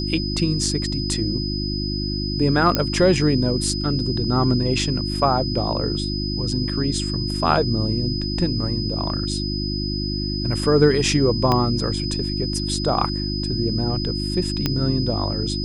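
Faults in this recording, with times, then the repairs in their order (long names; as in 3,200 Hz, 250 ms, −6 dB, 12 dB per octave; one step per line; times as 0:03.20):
mains hum 50 Hz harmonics 7 −26 dBFS
whistle 5,000 Hz −28 dBFS
0:02.75: click −4 dBFS
0:11.52: click −7 dBFS
0:14.66: click −6 dBFS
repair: click removal
notch filter 5,000 Hz, Q 30
hum removal 50 Hz, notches 7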